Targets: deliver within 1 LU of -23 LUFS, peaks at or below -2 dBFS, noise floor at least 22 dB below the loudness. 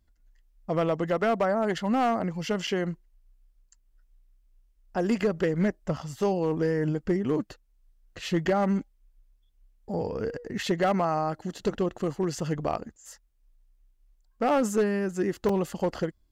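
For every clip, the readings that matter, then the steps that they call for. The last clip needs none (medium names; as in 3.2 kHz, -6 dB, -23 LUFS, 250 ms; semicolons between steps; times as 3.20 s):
clipped samples 0.9%; clipping level -18.0 dBFS; dropouts 2; longest dropout 3.6 ms; loudness -28.0 LUFS; peak level -18.0 dBFS; loudness target -23.0 LUFS
-> clip repair -18 dBFS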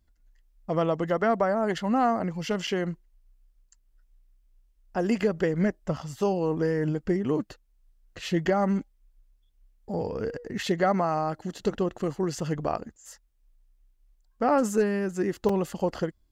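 clipped samples 0.0%; dropouts 2; longest dropout 3.6 ms
-> interpolate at 2.67/15.49 s, 3.6 ms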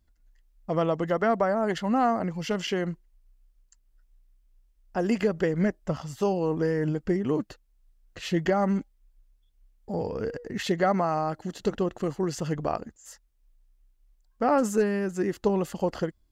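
dropouts 0; loudness -27.5 LUFS; peak level -11.0 dBFS; loudness target -23.0 LUFS
-> trim +4.5 dB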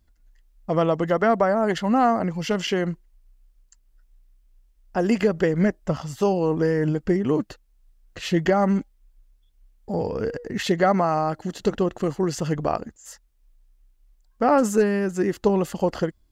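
loudness -23.0 LUFS; peak level -6.5 dBFS; noise floor -62 dBFS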